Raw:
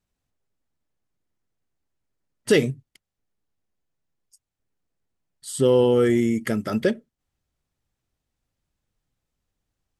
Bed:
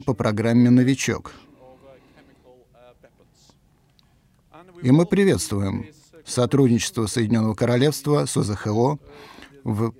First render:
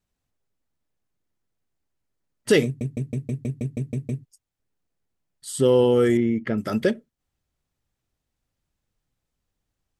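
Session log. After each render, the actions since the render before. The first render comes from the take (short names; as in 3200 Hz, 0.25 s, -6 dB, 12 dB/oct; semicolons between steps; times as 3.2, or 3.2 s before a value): 2.65 stutter in place 0.16 s, 10 plays; 6.17–6.58 air absorption 310 m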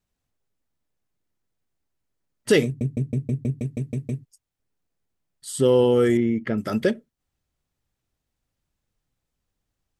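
2.72–3.59 tilt shelf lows +3.5 dB, about 650 Hz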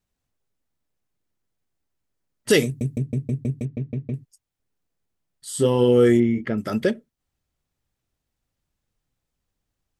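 2.5–2.98 high shelf 4900 Hz +11.5 dB; 3.65–4.14 air absorption 260 m; 5.49–6.45 doubler 25 ms -5 dB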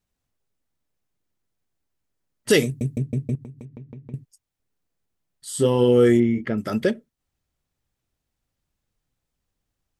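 3.35–4.14 compressor 8:1, threshold -36 dBFS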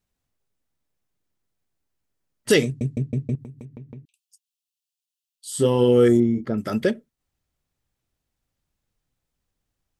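2.54–3.38 LPF 6800 Hz; 4.05–5.52 steep high-pass 2600 Hz 96 dB/oct; 6.08–6.54 band shelf 2300 Hz -13.5 dB 1.1 oct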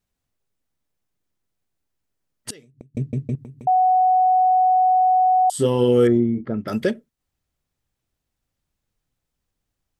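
2.5–2.95 flipped gate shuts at -19 dBFS, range -29 dB; 3.67–5.5 bleep 742 Hz -13 dBFS; 6.07–6.68 air absorption 290 m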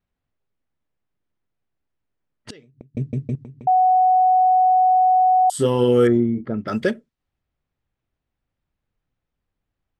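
low-pass opened by the level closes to 2800 Hz, open at -17 dBFS; dynamic EQ 1400 Hz, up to +5 dB, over -36 dBFS, Q 1.5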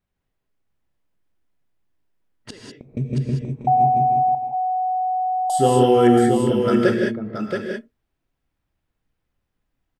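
echo 0.676 s -5.5 dB; non-linear reverb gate 0.22 s rising, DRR 0.5 dB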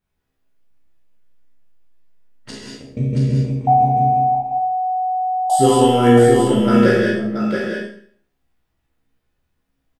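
doubler 15 ms -3 dB; Schroeder reverb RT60 0.54 s, combs from 26 ms, DRR -1 dB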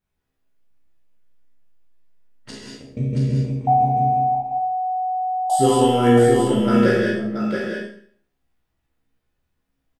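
gain -3 dB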